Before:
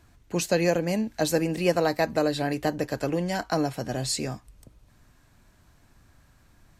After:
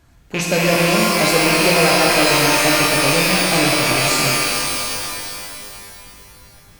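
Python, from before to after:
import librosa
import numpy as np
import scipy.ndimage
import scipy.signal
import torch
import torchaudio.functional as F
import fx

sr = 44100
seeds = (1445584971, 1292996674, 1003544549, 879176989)

y = fx.rattle_buzz(x, sr, strikes_db=-38.0, level_db=-16.0)
y = fx.rev_shimmer(y, sr, seeds[0], rt60_s=2.7, semitones=12, shimmer_db=-2, drr_db=-2.5)
y = F.gain(torch.from_numpy(y), 3.0).numpy()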